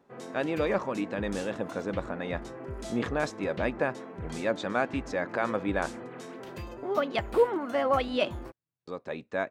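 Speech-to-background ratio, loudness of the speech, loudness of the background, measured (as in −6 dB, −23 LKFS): 10.5 dB, −31.0 LKFS, −41.5 LKFS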